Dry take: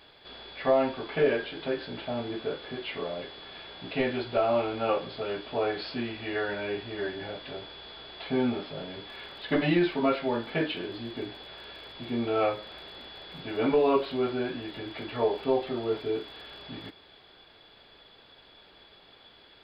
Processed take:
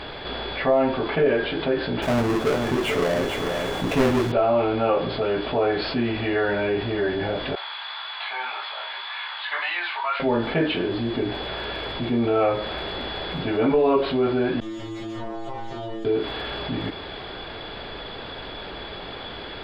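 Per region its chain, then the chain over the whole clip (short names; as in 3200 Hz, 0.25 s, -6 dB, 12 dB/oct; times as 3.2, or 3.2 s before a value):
2.02–4.32 half-waves squared off + echo 0.443 s -9 dB
7.55–10.2 elliptic band-pass 920–4500 Hz, stop band 70 dB + chorus 1.8 Hz, delay 17 ms, depth 4 ms
14.6–16.05 minimum comb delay 5.7 ms + metallic resonator 110 Hz, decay 0.77 s, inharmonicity 0.002 + compressor, threshold -46 dBFS
whole clip: LPF 2000 Hz 6 dB/oct; low shelf 61 Hz +6 dB; fast leveller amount 50%; gain +3 dB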